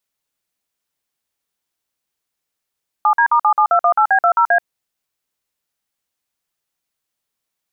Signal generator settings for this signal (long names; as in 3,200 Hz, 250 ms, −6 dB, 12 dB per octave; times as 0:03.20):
touch tones "7D*77218B20A", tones 82 ms, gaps 50 ms, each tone −12.5 dBFS